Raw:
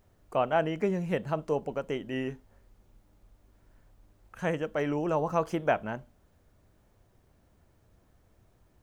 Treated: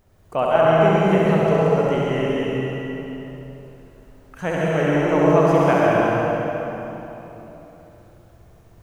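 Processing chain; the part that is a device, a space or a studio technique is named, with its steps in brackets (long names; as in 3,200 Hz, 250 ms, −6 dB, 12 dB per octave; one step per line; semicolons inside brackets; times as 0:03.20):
tunnel (flutter between parallel walls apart 11.7 metres, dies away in 1 s; convolution reverb RT60 3.4 s, pre-delay 97 ms, DRR −4.5 dB)
level +4.5 dB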